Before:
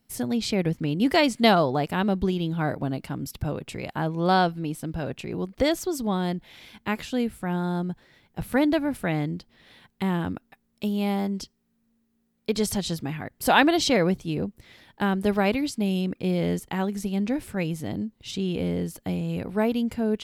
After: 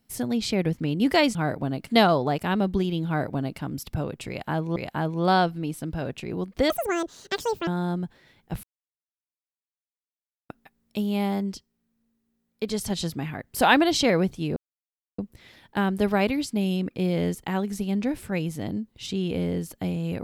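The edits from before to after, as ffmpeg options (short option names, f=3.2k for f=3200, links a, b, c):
-filter_complex "[0:a]asplit=11[a][b][c][d][e][f][g][h][i][j][k];[a]atrim=end=1.352[l];[b]atrim=start=2.548:end=3.072[m];[c]atrim=start=1.348:end=4.242[n];[d]atrim=start=3.768:end=5.714[o];[e]atrim=start=5.71:end=7.54,asetpts=PTS-STARTPTS,asetrate=82908,aresample=44100,atrim=end_sample=42927,asetpts=PTS-STARTPTS[p];[f]atrim=start=7.536:end=8.5,asetpts=PTS-STARTPTS,afade=t=out:st=0.96:d=0.004:c=hsin[q];[g]atrim=start=8.5:end=10.36,asetpts=PTS-STARTPTS,volume=0[r];[h]atrim=start=10.36:end=11.402,asetpts=PTS-STARTPTS,afade=t=in:d=0.004:c=hsin[s];[i]atrim=start=11.398:end=12.772,asetpts=PTS-STARTPTS,volume=-3.5dB[t];[j]atrim=start=12.768:end=14.43,asetpts=PTS-STARTPTS,afade=t=out:st=1.658:d=0.004:c=hsin,apad=pad_dur=0.62[u];[k]atrim=start=14.43,asetpts=PTS-STARTPTS,afade=t=in:d=0.004:c=hsin[v];[l][m]acrossfade=d=0.004:c1=hsin:c2=hsin[w];[w][n]acrossfade=d=0.004:c1=hsin:c2=hsin[x];[x][o]acrossfade=d=0.004:c1=hsin:c2=hsin[y];[y][p]acrossfade=d=0.004:c1=hsin:c2=hsin[z];[q][r][s]concat=n=3:v=0:a=1[aa];[z][aa]acrossfade=d=0.004:c1=hsin:c2=hsin[ab];[ab][t]acrossfade=d=0.004:c1=hsin:c2=hsin[ac];[u][v]concat=n=2:v=0:a=1[ad];[ac][ad]acrossfade=d=0.004:c1=hsin:c2=hsin"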